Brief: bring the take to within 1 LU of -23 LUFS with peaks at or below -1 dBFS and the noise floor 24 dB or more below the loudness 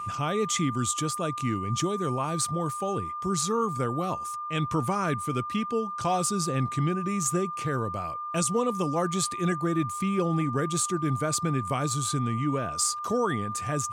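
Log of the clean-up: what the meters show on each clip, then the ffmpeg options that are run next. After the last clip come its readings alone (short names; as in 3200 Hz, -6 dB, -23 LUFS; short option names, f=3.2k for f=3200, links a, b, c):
steady tone 1200 Hz; tone level -32 dBFS; loudness -28.0 LUFS; peak -13.5 dBFS; loudness target -23.0 LUFS
-> -af "bandreject=f=1.2k:w=30"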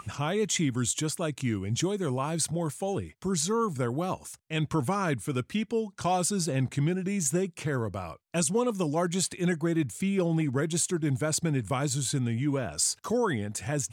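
steady tone none; loudness -29.0 LUFS; peak -14.5 dBFS; loudness target -23.0 LUFS
-> -af "volume=6dB"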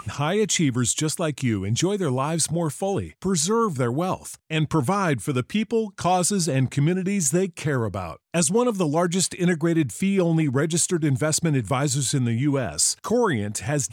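loudness -23.0 LUFS; peak -8.5 dBFS; noise floor -54 dBFS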